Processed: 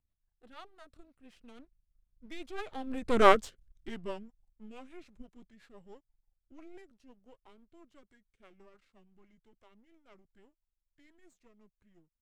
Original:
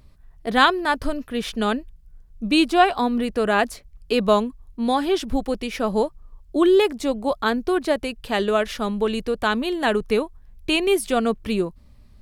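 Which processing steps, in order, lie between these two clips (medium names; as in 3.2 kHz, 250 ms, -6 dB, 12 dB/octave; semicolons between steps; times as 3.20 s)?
partial rectifier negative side -12 dB; Doppler pass-by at 3.24 s, 28 m/s, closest 1.6 m; rotary cabinet horn 6 Hz; formant shift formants -4 st; trim +6.5 dB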